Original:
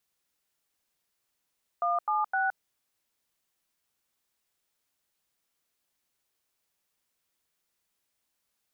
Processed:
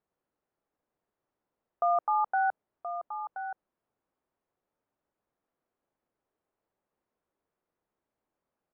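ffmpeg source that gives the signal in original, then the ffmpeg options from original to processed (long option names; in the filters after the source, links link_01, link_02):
-f lavfi -i "aevalsrc='0.0447*clip(min(mod(t,0.257),0.168-mod(t,0.257))/0.002,0,1)*(eq(floor(t/0.257),0)*(sin(2*PI*697*mod(t,0.257))+sin(2*PI*1209*mod(t,0.257)))+eq(floor(t/0.257),1)*(sin(2*PI*852*mod(t,0.257))+sin(2*PI*1209*mod(t,0.257)))+eq(floor(t/0.257),2)*(sin(2*PI*770*mod(t,0.257))+sin(2*PI*1477*mod(t,0.257))))':duration=0.771:sample_rate=44100"
-af "lowpass=1200,equalizer=frequency=430:width=0.55:gain=6,aecho=1:1:1026:0.316"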